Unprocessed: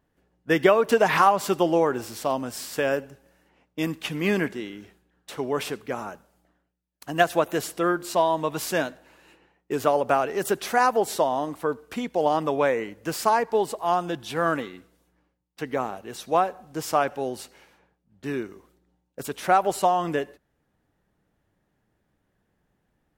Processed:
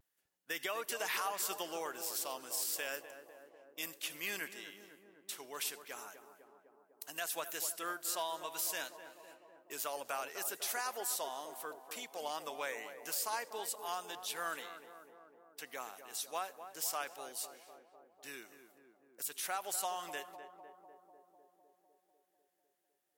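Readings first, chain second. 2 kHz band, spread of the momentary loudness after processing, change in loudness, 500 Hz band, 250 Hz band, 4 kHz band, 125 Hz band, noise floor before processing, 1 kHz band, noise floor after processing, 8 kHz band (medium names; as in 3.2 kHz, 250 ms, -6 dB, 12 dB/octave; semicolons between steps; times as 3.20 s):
-12.5 dB, 17 LU, -14.5 dB, -21.5 dB, -26.0 dB, -6.5 dB, -31.5 dB, -74 dBFS, -18.0 dB, -79 dBFS, -1.5 dB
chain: differentiator; vibrato 0.37 Hz 19 cents; peak limiter -27.5 dBFS, peak gain reduction 10 dB; tape echo 250 ms, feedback 82%, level -8 dB, low-pass 1.1 kHz; trim +1 dB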